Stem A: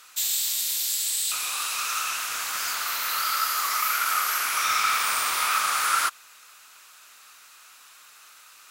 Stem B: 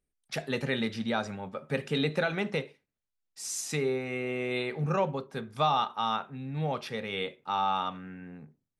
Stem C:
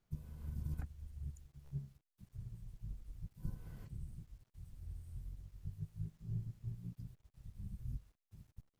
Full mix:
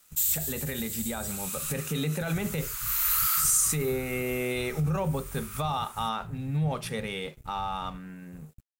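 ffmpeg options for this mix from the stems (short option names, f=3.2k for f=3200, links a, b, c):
-filter_complex "[0:a]highpass=f=950:w=0.5412,highpass=f=950:w=1.3066,volume=-10dB,afade=t=out:st=3.51:d=0.51:silence=0.251189[a];[1:a]equalizer=f=9.2k:w=3.7:g=6.5,volume=-1.5dB,asplit=2[b][c];[2:a]bass=f=250:g=5,treble=f=4k:g=-12,acompressor=threshold=-45dB:ratio=6,volume=2dB[d];[c]apad=whole_len=383687[e];[a][e]sidechaincompress=threshold=-41dB:ratio=4:attack=48:release=501[f];[f][b]amix=inputs=2:normalize=0,equalizer=f=160:t=o:w=0.32:g=11.5,alimiter=level_in=1dB:limit=-24dB:level=0:latency=1:release=36,volume=-1dB,volume=0dB[g];[d][g]amix=inputs=2:normalize=0,dynaudnorm=f=440:g=7:m=4dB,aexciter=amount=3.6:drive=5.5:freq=6.8k,aeval=exprs='sgn(val(0))*max(abs(val(0))-0.00188,0)':c=same"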